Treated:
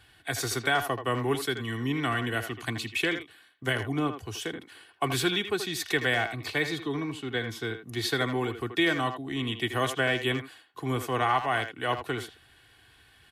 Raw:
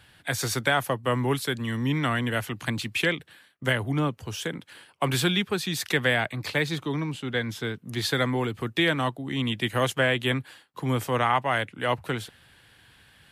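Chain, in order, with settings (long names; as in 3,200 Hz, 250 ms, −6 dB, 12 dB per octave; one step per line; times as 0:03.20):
comb filter 2.7 ms, depth 53%
far-end echo of a speakerphone 80 ms, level −8 dB
level −3.5 dB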